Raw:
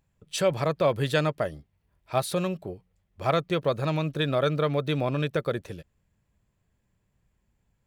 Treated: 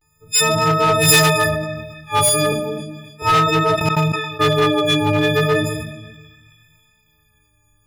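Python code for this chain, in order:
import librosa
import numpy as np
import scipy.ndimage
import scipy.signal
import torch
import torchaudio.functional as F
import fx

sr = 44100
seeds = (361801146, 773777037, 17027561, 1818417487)

y = fx.freq_snap(x, sr, grid_st=6)
y = fx.vibrato(y, sr, rate_hz=0.36, depth_cents=49.0)
y = fx.highpass(y, sr, hz=290.0, slope=24, at=(2.52, 3.22))
y = fx.room_shoebox(y, sr, seeds[0], volume_m3=3500.0, walls='furnished', distance_m=4.0)
y = fx.step_gate(y, sr, bpm=193, pattern='.x.xx...', floor_db=-24.0, edge_ms=4.5, at=(3.75, 4.39), fade=0.02)
y = fx.echo_banded(y, sr, ms=272, feedback_pct=62, hz=2700.0, wet_db=-18.5)
y = np.clip(10.0 ** (14.5 / 20.0) * y, -1.0, 1.0) / 10.0 ** (14.5 / 20.0)
y = fx.high_shelf(y, sr, hz=4300.0, db=12.0, at=(1.0, 1.49), fade=0.02)
y = fx.sustainer(y, sr, db_per_s=50.0)
y = y * librosa.db_to_amplitude(4.0)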